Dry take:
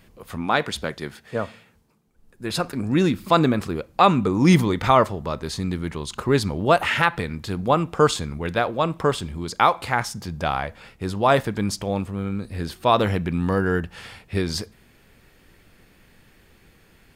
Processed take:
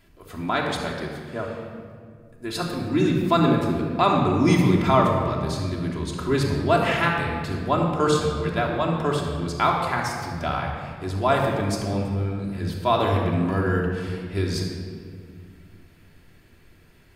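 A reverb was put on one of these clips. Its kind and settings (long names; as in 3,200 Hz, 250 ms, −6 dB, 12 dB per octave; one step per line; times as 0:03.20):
rectangular room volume 3,400 cubic metres, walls mixed, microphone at 3 metres
level −6 dB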